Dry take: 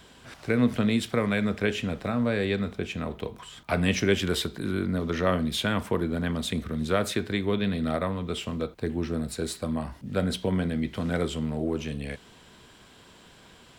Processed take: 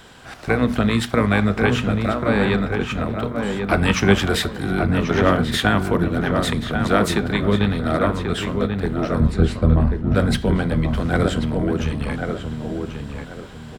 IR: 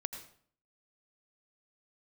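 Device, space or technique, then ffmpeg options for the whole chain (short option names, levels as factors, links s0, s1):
octave pedal: -filter_complex "[0:a]asettb=1/sr,asplit=3[s0][s1][s2];[s0]atrim=end=9.204[s3];[s1]atrim=start=9.2:end=10.15,asetpts=PTS-STARTPTS,afade=t=in:d=0.004:c=qsin,afade=t=out:st=0.946:d=0.004:c=qsin,aemphasis=mode=reproduction:type=riaa[s4];[s2]atrim=start=10.146[s5];[s3][s4]acrossfade=d=0.004:c1=hsin:c2=qsin[s6];[s6][s5]acrossfade=d=0.004:c1=qsin:c2=hsin,equalizer=f=1400:w=3:g=5,bandreject=f=60:t=h:w=6,bandreject=f=120:t=h:w=6,bandreject=f=180:t=h:w=6,bandreject=f=240:t=h:w=6,bandreject=f=300:t=h:w=6,asplit=2[s7][s8];[s8]adelay=1087,lowpass=f=1900:p=1,volume=0.596,asplit=2[s9][s10];[s10]adelay=1087,lowpass=f=1900:p=1,volume=0.32,asplit=2[s11][s12];[s12]adelay=1087,lowpass=f=1900:p=1,volume=0.32,asplit=2[s13][s14];[s14]adelay=1087,lowpass=f=1900:p=1,volume=0.32[s15];[s7][s9][s11][s13][s15]amix=inputs=5:normalize=0,asplit=2[s16][s17];[s17]asetrate=22050,aresample=44100,atempo=2,volume=0.631[s18];[s16][s18]amix=inputs=2:normalize=0,volume=1.88"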